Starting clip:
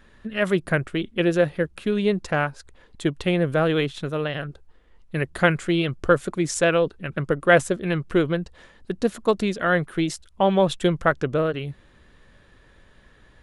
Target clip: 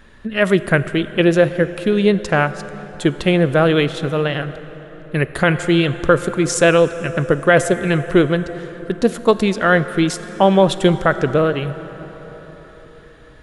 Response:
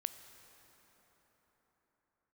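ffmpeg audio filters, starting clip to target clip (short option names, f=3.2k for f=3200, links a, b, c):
-filter_complex "[0:a]asplit=2[a][b];[1:a]atrim=start_sample=2205[c];[b][c]afir=irnorm=-1:irlink=0,volume=8dB[d];[a][d]amix=inputs=2:normalize=0,alimiter=level_in=-2dB:limit=-1dB:release=50:level=0:latency=1,volume=-1dB"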